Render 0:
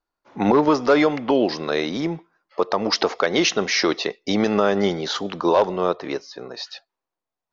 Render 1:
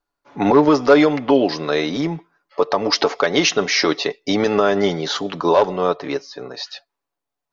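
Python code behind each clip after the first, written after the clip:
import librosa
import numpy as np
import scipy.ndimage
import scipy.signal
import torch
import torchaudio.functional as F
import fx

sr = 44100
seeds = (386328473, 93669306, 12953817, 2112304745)

y = x + 0.44 * np.pad(x, (int(7.0 * sr / 1000.0), 0))[:len(x)]
y = y * librosa.db_to_amplitude(2.0)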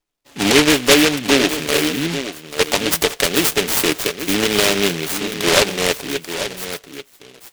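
y = x + 10.0 ** (-10.5 / 20.0) * np.pad(x, (int(838 * sr / 1000.0), 0))[:len(x)]
y = fx.noise_mod_delay(y, sr, seeds[0], noise_hz=2500.0, depth_ms=0.27)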